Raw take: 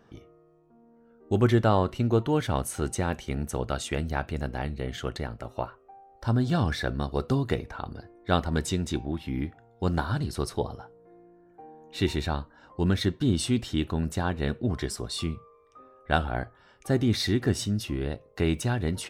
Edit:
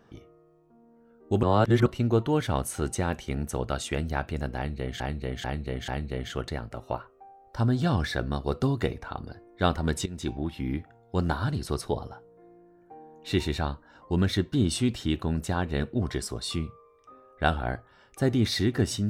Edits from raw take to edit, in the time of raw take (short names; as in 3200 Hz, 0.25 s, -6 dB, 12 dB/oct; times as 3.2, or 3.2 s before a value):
1.43–1.86 reverse
4.56–5 loop, 4 plays
8.74–9 fade in, from -17 dB